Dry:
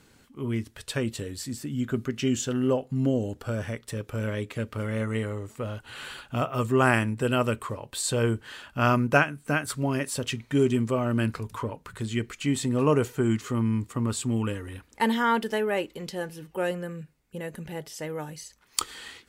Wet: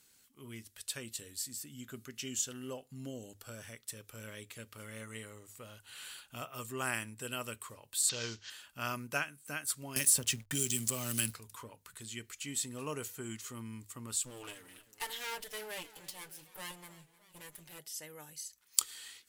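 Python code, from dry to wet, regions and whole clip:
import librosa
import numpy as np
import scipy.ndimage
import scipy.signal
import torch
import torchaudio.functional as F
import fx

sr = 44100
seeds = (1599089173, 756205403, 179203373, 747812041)

y = fx.chain(x, sr, fx.cvsd(bps=32000),
    fx.high_shelf(hz=2100.0, db=10.0), at=(8.09, 8.5))
y = fx.chain(y, sr, fx.bass_treble(bass_db=7, treble_db=11),
    fx.backlash(play_db=-38.5),
    fx.band_squash(depth_pct=100), at=(9.96, 11.34))
y = fx.chain(y, sr, fx.lower_of_two(delay_ms=6.7),
    fx.echo_warbled(ms=305, feedback_pct=60, rate_hz=2.8, cents=111, wet_db=-18.0), at=(14.23, 17.79))
y = F.preemphasis(torch.from_numpy(y), 0.9).numpy()
y = fx.hum_notches(y, sr, base_hz=50, count=2)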